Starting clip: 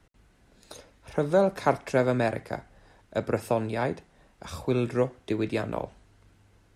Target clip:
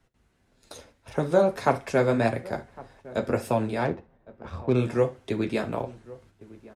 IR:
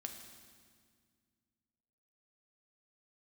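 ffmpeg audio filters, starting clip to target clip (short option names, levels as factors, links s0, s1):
-filter_complex "[0:a]flanger=delay=7.4:depth=6.5:regen=-29:speed=1.7:shape=sinusoidal,asettb=1/sr,asplit=3[s0][s1][s2];[s0]atrim=end=3.854[s3];[s1]atrim=start=3.85:end=4.76,asetpts=PTS-STARTPTS,afade=t=in:d=0.004:c=qsin,afade=t=out:st=0.906:d=0.004:c=qsin,adynamicsmooth=sensitivity=6:basefreq=1500[s4];[s2]atrim=start=4.756[s5];[s3][s4]acrossfade=d=0.004:c1=hsin:c2=qsin[s6];[s6][s5]acrossfade=d=0.004:c1=qsin:c2=hsin,asplit=2[s7][s8];[s8]adelay=1108,volume=0.1,highshelf=f=4000:g=-24.9[s9];[s7][s9]amix=inputs=2:normalize=0,agate=range=0.447:threshold=0.00112:ratio=16:detection=peak,asplit=2[s10][s11];[1:a]atrim=start_sample=2205,atrim=end_sample=3528[s12];[s11][s12]afir=irnorm=-1:irlink=0,volume=1.26[s13];[s10][s13]amix=inputs=2:normalize=0"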